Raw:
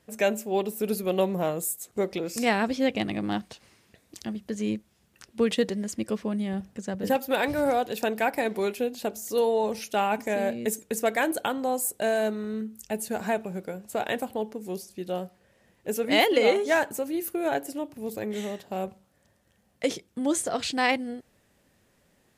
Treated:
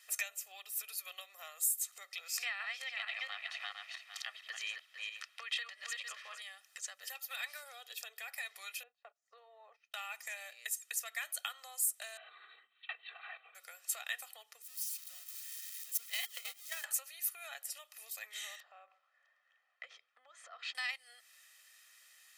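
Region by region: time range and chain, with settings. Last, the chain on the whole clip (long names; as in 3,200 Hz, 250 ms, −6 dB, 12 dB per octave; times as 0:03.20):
0:02.37–0:06.42: feedback delay that plays each chunk backwards 227 ms, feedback 40%, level −4 dB + three-way crossover with the lows and the highs turned down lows −22 dB, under 440 Hz, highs −16 dB, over 3,700 Hz
0:07.63–0:08.28: downward compressor 1.5 to 1, threshold −29 dBFS + hollow resonant body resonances 440/3,300 Hz, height 12 dB, ringing for 30 ms
0:08.83–0:09.94: noise gate −35 dBFS, range −21 dB + low-pass filter 1,000 Hz
0:12.17–0:13.55: downward compressor 3 to 1, threshold −32 dBFS + linear-prediction vocoder at 8 kHz whisper + comb filter 2.6 ms, depth 85%
0:14.62–0:16.84: spike at every zero crossing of −18 dBFS + noise gate −19 dBFS, range −27 dB + downward compressor, threshold −35 dBFS
0:18.60–0:20.75: low-pass filter 1,400 Hz + downward compressor 5 to 1, threshold −42 dBFS
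whole clip: downward compressor 10 to 1, threshold −38 dBFS; Bessel high-pass filter 2,000 Hz, order 4; comb filter 1.6 ms, depth 71%; level +8 dB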